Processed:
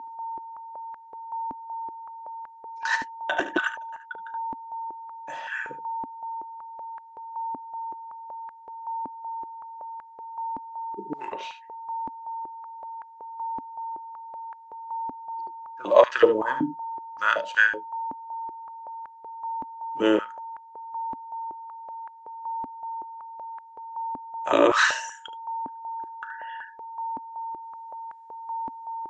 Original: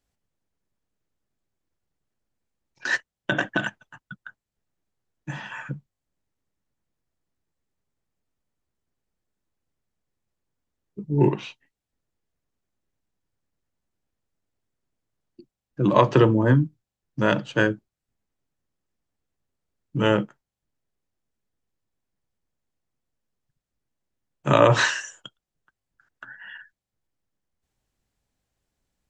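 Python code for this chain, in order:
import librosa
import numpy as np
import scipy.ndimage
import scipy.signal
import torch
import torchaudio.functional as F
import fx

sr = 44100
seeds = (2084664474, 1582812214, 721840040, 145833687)

p1 = fx.high_shelf(x, sr, hz=3900.0, db=10.5)
p2 = p1 + 10.0 ** (-31.0 / 20.0) * np.sin(2.0 * np.pi * 910.0 * np.arange(len(p1)) / sr)
p3 = fx.air_absorb(p2, sr, metres=57.0)
p4 = p3 + fx.room_early_taps(p3, sr, ms=(36, 74), db=(-16.0, -11.0), dry=0)
p5 = fx.filter_held_highpass(p4, sr, hz=5.3, low_hz=270.0, high_hz=1600.0)
y = F.gain(torch.from_numpy(p5), -6.0).numpy()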